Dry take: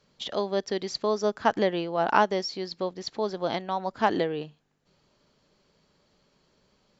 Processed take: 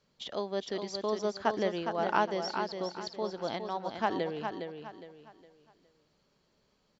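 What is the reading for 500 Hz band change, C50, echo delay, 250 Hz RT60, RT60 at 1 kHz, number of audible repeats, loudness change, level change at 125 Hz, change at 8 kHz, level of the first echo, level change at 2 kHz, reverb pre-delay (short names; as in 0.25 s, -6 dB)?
-5.5 dB, none, 0.411 s, none, none, 3, -6.0 dB, -5.5 dB, n/a, -6.5 dB, -5.5 dB, none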